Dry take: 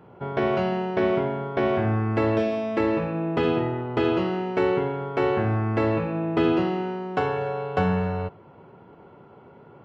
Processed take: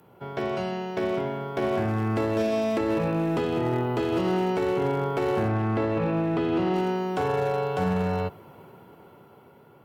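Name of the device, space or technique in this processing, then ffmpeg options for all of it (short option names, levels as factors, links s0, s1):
FM broadcast chain: -filter_complex "[0:a]highpass=52,dynaudnorm=f=560:g=7:m=5.62,acrossover=split=110|1300[s0][s1][s2];[s0]acompressor=threshold=0.0282:ratio=4[s3];[s1]acompressor=threshold=0.224:ratio=4[s4];[s2]acompressor=threshold=0.0141:ratio=4[s5];[s3][s4][s5]amix=inputs=3:normalize=0,aemphasis=mode=production:type=50fm,alimiter=limit=0.266:level=0:latency=1:release=28,asoftclip=type=hard:threshold=0.2,lowpass=f=15000:w=0.5412,lowpass=f=15000:w=1.3066,aemphasis=mode=production:type=50fm,asettb=1/sr,asplit=3[s6][s7][s8];[s6]atrim=end=5.484[s9];[s7]atrim=start=5.48:end=6.74,asetpts=PTS-STARTPTS,afade=t=in:d=0.004:c=qsin,afade=t=out:st=1.256:d=0.004:c=qsin,acrossover=split=4300[s10][s11];[s11]acompressor=threshold=0.00112:ratio=4:attack=1:release=60[s12];[s10][s12]amix=inputs=2:normalize=0[s13];[s8]atrim=start=6.736[s14];[s9][s13]acrossfade=d=0.004:c1=hsin:c2=qsin[s15];[s15][s14]acrossfade=d=0.004:c1=qsin:c2=hsin,volume=0.562"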